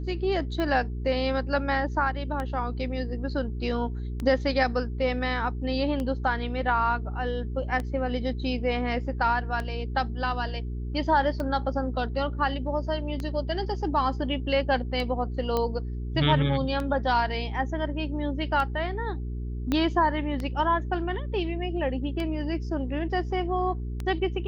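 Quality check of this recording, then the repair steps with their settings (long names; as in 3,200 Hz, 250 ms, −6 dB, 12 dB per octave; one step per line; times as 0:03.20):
mains hum 60 Hz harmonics 7 −32 dBFS
scratch tick 33 1/3 rpm −19 dBFS
0:15.57: click −14 dBFS
0:19.72: click −13 dBFS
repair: click removal
hum removal 60 Hz, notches 7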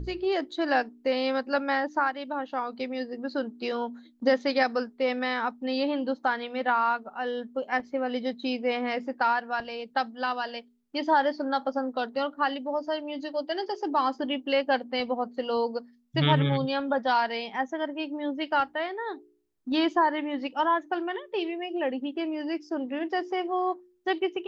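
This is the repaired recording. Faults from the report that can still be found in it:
0:19.72: click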